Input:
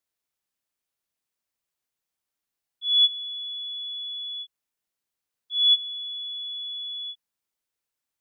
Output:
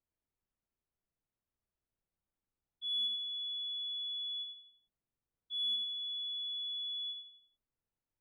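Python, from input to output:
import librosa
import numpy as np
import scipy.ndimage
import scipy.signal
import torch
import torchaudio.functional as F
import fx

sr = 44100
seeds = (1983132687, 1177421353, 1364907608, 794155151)

y = fx.tilt_eq(x, sr, slope=-3.5)
y = fx.leveller(y, sr, passes=2)
y = 10.0 ** (-26.5 / 20.0) * np.tanh(y / 10.0 ** (-26.5 / 20.0))
y = fx.air_absorb(y, sr, metres=260.0)
y = fx.echo_feedback(y, sr, ms=85, feedback_pct=42, wet_db=-6.5)
y = y * 10.0 ** (-1.5 / 20.0)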